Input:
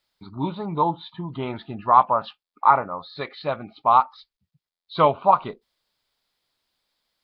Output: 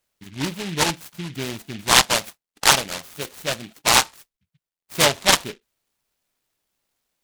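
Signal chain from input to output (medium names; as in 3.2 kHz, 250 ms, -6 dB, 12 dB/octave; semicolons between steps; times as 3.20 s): delay time shaken by noise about 2.6 kHz, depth 0.24 ms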